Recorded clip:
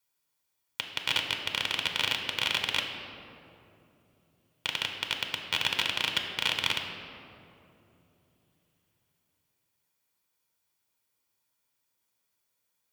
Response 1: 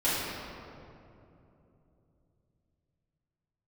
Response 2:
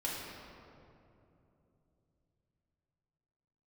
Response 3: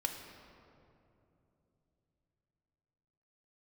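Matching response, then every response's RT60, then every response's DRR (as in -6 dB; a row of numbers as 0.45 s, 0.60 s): 3; 2.9 s, 2.9 s, 3.0 s; -12.0 dB, -5.5 dB, 3.5 dB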